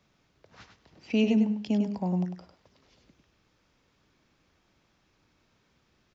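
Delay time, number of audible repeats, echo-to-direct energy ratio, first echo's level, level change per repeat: 0.1 s, 2, -7.0 dB, -7.0 dB, -16.0 dB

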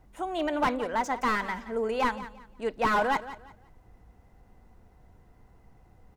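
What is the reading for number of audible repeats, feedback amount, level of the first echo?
2, 27%, -14.5 dB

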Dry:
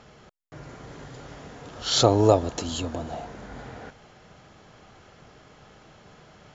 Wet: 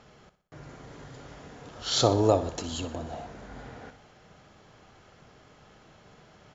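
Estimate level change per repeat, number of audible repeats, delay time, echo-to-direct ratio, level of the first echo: -6.5 dB, 4, 61 ms, -12.0 dB, -13.0 dB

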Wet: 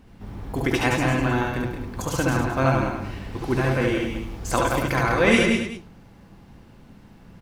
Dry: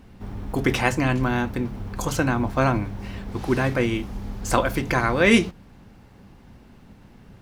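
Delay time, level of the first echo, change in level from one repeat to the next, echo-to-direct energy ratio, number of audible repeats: 68 ms, -3.5 dB, no steady repeat, 1.0 dB, 5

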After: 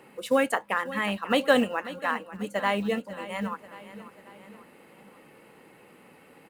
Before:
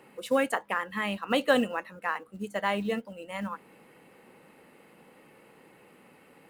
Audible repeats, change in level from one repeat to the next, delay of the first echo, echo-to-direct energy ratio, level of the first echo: 3, -6.0 dB, 0.541 s, -14.0 dB, -15.0 dB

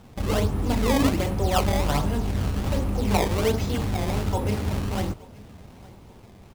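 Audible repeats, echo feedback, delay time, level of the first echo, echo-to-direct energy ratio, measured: 2, 45%, 0.873 s, -23.5 dB, -22.5 dB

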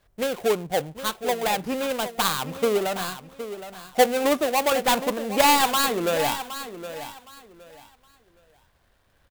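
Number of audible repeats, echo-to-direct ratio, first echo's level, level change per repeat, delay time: 2, -11.5 dB, -12.0 dB, -12.5 dB, 0.766 s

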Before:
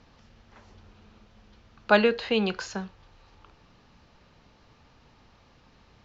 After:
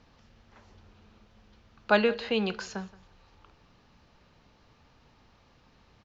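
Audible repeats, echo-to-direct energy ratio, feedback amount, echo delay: 2, -21.0 dB, 28%, 0.174 s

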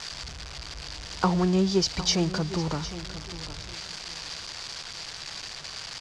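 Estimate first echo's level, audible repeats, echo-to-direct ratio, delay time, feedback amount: -14.0 dB, 2, -13.5 dB, 0.758 s, 25%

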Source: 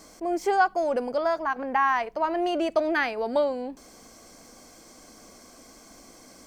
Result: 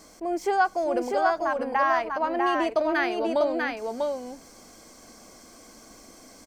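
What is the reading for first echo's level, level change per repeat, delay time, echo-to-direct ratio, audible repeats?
-3.5 dB, no steady repeat, 0.646 s, -3.5 dB, 1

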